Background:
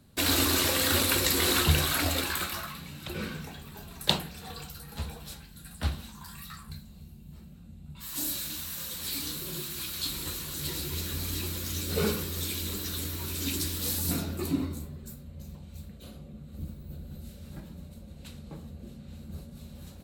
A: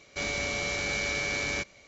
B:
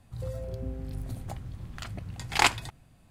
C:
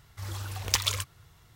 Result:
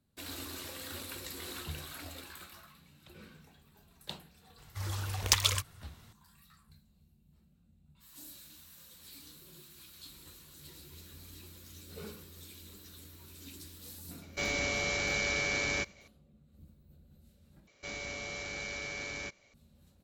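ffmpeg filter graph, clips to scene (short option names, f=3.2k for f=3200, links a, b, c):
-filter_complex "[1:a]asplit=2[a][b];[0:a]volume=-18dB[c];[a]agate=range=-33dB:threshold=-54dB:ratio=3:release=100:detection=peak[d];[c]asplit=2[e][f];[e]atrim=end=17.674[g];[b]atrim=end=1.87,asetpts=PTS-STARTPTS,volume=-9.5dB[h];[f]atrim=start=19.536[i];[3:a]atrim=end=1.55,asetpts=PTS-STARTPTS,afade=t=in:d=0.004:c=hsin,afade=t=out:st=1.546:d=0.004:c=hsin,adelay=4580[j];[d]atrim=end=1.87,asetpts=PTS-STARTPTS,volume=-1.5dB,afade=t=in:d=0.004:c=hsin,afade=t=out:st=1.866:d=0.004:c=hsin,adelay=14210[k];[g][h]acrossfade=d=0.004:c1=hsin:c2=hsin[l];[l][i]acrossfade=d=0.004:c1=hsin:c2=hsin[m];[m][j][k]amix=inputs=3:normalize=0"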